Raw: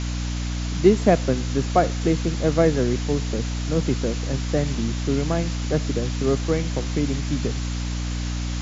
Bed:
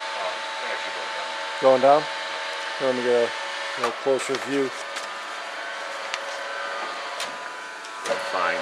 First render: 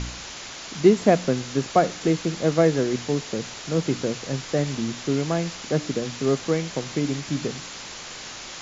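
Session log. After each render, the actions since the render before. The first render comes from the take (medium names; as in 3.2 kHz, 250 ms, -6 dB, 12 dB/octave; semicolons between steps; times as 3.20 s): de-hum 60 Hz, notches 5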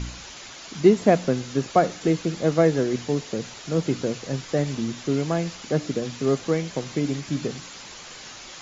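noise reduction 6 dB, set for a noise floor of -38 dBFS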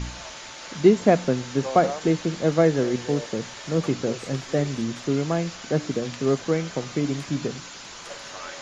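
add bed -15 dB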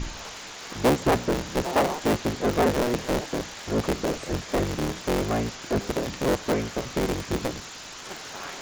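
cycle switcher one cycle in 3, inverted; saturation -15 dBFS, distortion -11 dB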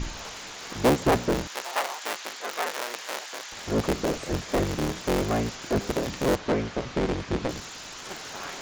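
1.47–3.52 s: high-pass 1 kHz; 6.36–7.49 s: distance through air 110 m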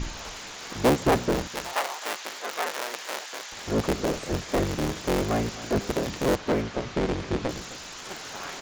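delay 259 ms -16 dB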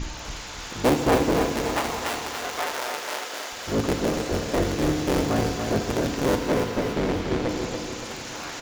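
feedback delay 285 ms, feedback 50%, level -5.5 dB; FDN reverb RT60 2.9 s, high-frequency decay 0.95×, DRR 5.5 dB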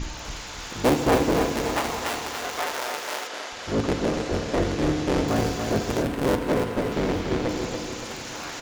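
3.27–5.28 s: distance through air 52 m; 6.02–6.92 s: median filter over 9 samples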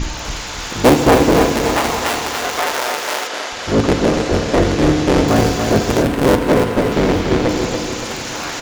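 trim +10 dB; peak limiter -2 dBFS, peak gain reduction 2.5 dB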